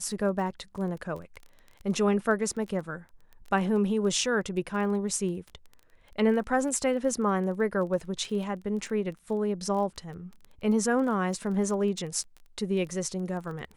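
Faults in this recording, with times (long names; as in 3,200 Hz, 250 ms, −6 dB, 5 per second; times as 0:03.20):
surface crackle 16 per second −36 dBFS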